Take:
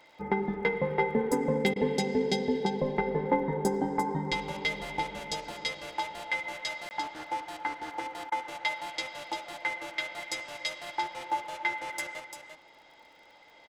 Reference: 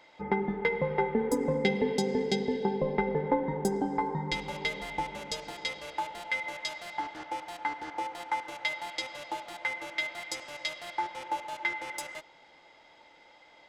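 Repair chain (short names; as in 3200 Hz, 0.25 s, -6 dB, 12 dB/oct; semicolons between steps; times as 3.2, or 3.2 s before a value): de-click; interpolate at 6.89, 19 ms; interpolate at 1.74/8.3, 19 ms; inverse comb 0.345 s -7 dB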